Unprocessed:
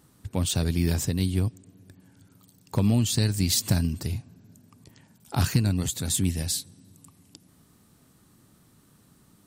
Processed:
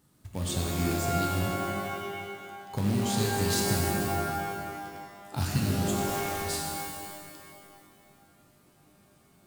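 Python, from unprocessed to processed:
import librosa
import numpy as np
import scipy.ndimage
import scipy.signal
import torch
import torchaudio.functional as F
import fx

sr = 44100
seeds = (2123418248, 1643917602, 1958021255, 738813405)

y = fx.quant_float(x, sr, bits=2)
y = fx.overflow_wrap(y, sr, gain_db=29.5, at=(5.93, 6.42))
y = fx.rev_shimmer(y, sr, seeds[0], rt60_s=1.9, semitones=12, shimmer_db=-2, drr_db=-0.5)
y = y * librosa.db_to_amplitude(-8.0)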